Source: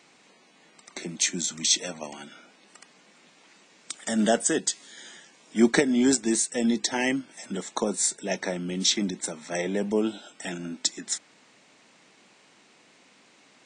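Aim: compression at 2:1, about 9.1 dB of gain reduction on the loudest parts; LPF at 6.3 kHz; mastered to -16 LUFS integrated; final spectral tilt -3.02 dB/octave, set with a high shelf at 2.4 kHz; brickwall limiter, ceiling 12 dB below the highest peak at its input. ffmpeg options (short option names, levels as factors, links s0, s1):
-af "lowpass=6300,highshelf=f=2400:g=6.5,acompressor=threshold=0.0282:ratio=2,volume=8.91,alimiter=limit=0.596:level=0:latency=1"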